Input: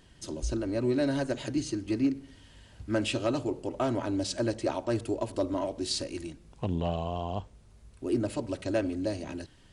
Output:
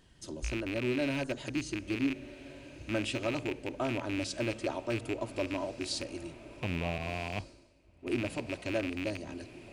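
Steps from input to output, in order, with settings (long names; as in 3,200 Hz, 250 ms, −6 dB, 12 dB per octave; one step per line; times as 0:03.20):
loose part that buzzes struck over −34 dBFS, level −22 dBFS
feedback delay with all-pass diffusion 1,400 ms, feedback 52%, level −16 dB
0:06.98–0:08.07: multiband upward and downward expander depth 100%
level −4.5 dB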